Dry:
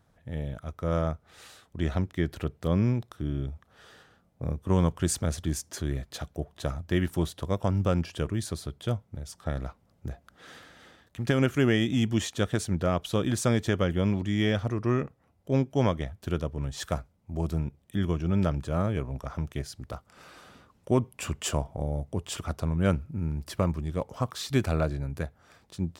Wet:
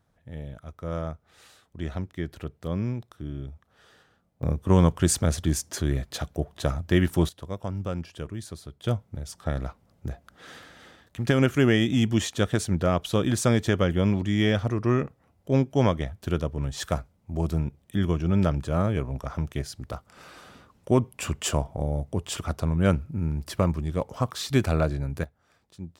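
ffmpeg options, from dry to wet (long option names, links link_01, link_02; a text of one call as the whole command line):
ffmpeg -i in.wav -af "asetnsamples=nb_out_samples=441:pad=0,asendcmd='4.43 volume volume 5dB;7.29 volume volume -5.5dB;8.84 volume volume 3dB;25.24 volume volume -8dB',volume=-4dB" out.wav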